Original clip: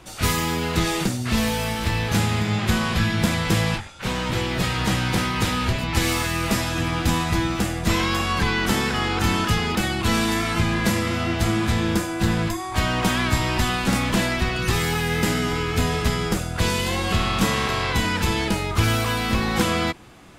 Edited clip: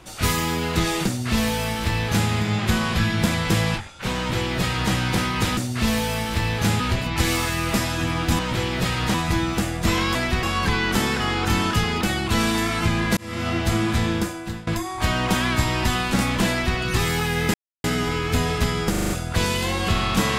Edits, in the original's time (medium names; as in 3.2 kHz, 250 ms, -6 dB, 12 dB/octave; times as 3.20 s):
1.07–2.30 s: copy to 5.57 s
4.17–4.92 s: copy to 7.16 s
10.91–11.22 s: fade in
11.81–12.41 s: fade out, to -21 dB
14.24–14.52 s: copy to 8.17 s
15.28 s: insert silence 0.30 s
16.34 s: stutter 0.04 s, 6 plays